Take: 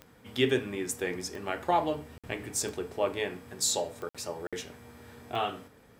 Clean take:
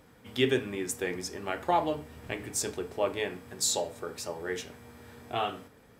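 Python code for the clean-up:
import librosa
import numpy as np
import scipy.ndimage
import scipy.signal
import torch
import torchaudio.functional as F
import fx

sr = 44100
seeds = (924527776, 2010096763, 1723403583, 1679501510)

y = fx.fix_declick_ar(x, sr, threshold=10.0)
y = fx.fix_interpolate(y, sr, at_s=(2.18, 4.09, 4.47), length_ms=56.0)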